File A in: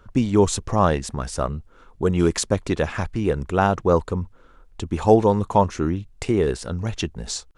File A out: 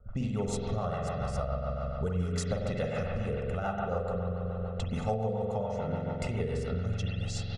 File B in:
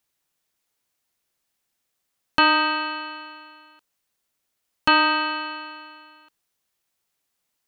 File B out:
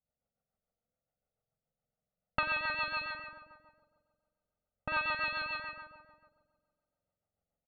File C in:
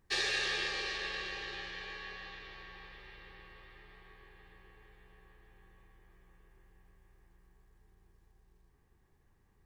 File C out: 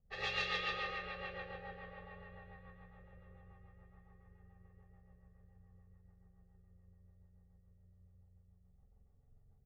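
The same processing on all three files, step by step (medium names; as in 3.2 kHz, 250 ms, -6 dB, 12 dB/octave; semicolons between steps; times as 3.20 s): comb 1.5 ms, depth 95%; spring tank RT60 2.1 s, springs 45 ms, chirp 55 ms, DRR -3.5 dB; compression 6:1, threshold -22 dBFS; rotary cabinet horn 7 Hz; level-controlled noise filter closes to 610 Hz, open at -22.5 dBFS; trim -5.5 dB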